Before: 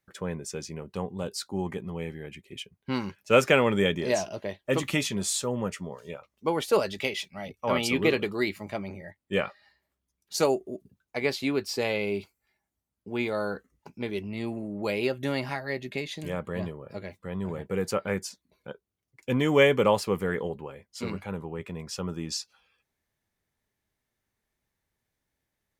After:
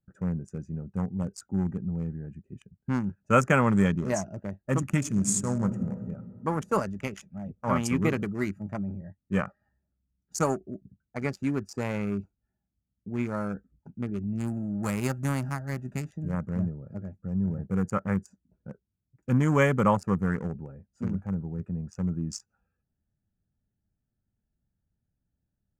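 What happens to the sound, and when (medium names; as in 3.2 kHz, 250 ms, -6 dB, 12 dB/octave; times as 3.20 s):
4.98–5.87 s: reverb throw, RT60 2.4 s, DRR 5 dB
14.38–16.09 s: formants flattened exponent 0.6
whole clip: local Wiener filter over 41 samples; FFT filter 200 Hz 0 dB, 430 Hz -13 dB, 1.3 kHz -1 dB, 3.9 kHz -23 dB, 6.6 kHz 0 dB, 14 kHz -10 dB; trim +6.5 dB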